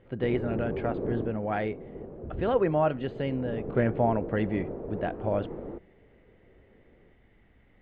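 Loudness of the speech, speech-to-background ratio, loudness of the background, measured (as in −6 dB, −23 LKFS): −30.0 LKFS, 8.0 dB, −38.0 LKFS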